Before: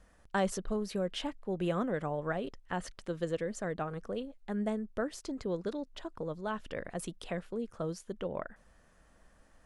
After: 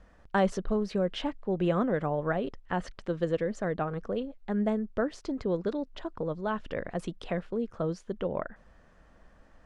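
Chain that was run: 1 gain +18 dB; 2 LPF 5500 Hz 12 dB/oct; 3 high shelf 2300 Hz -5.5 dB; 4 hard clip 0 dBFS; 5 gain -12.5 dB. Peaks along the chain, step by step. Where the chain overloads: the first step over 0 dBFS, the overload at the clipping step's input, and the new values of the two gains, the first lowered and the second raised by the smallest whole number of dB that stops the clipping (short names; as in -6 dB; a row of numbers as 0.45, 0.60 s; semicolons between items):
-0.5, -1.0, -1.5, -1.5, -14.0 dBFS; no overload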